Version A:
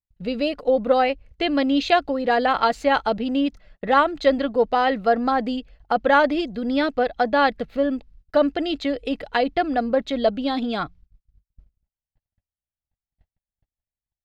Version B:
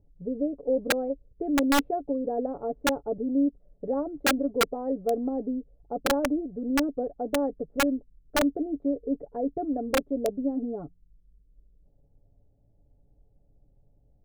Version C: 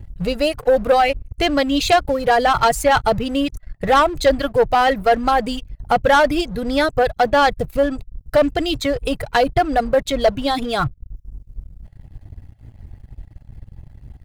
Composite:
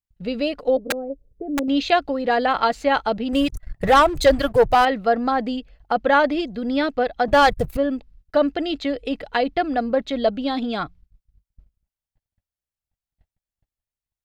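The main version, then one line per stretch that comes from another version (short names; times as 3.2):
A
0.77–1.68 from B
3.33–4.85 from C
7.28–7.77 from C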